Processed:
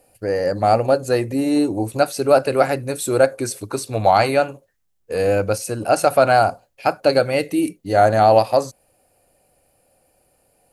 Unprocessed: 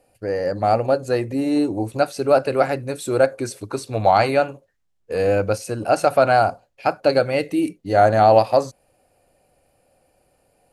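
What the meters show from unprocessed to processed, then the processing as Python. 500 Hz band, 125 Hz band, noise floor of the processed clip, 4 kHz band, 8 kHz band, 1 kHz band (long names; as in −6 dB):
+1.0 dB, +1.0 dB, −65 dBFS, +3.0 dB, +6.5 dB, +1.0 dB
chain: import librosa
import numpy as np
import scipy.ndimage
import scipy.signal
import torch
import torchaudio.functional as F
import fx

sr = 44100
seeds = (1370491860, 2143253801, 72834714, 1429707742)

p1 = fx.rider(x, sr, range_db=4, speed_s=2.0)
p2 = x + F.gain(torch.from_numpy(p1), -1.0).numpy()
p3 = fx.high_shelf(p2, sr, hz=8700.0, db=12.0)
y = F.gain(torch.from_numpy(p3), -4.5).numpy()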